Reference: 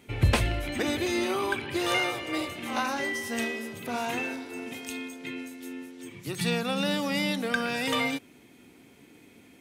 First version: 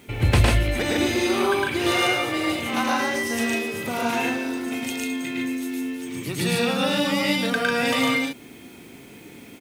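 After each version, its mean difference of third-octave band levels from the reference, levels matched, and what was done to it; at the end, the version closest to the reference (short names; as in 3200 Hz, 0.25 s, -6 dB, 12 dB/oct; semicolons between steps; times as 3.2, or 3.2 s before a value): 4.0 dB: in parallel at +1 dB: compressor, threshold -38 dBFS, peak gain reduction 19.5 dB; on the sum: added noise blue -64 dBFS; loudspeakers at several distances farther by 37 m -1 dB, 50 m -1 dB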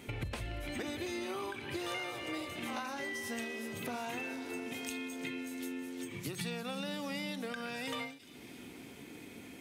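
5.5 dB: compressor 6:1, threshold -42 dBFS, peak gain reduction 23 dB; thin delay 0.346 s, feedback 67%, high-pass 3300 Hz, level -14.5 dB; ending taper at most 110 dB/s; gain +4.5 dB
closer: first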